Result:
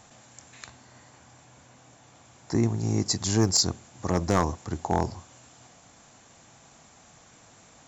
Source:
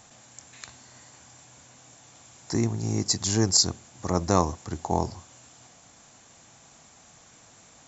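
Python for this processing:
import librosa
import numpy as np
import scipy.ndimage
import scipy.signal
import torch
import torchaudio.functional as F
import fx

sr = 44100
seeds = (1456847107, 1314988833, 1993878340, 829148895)

y = fx.high_shelf(x, sr, hz=3400.0, db=fx.steps((0.0, -5.5), (0.68, -10.5), (2.63, -5.0)))
y = np.clip(y, -10.0 ** (-14.5 / 20.0), 10.0 ** (-14.5 / 20.0))
y = y * librosa.db_to_amplitude(1.5)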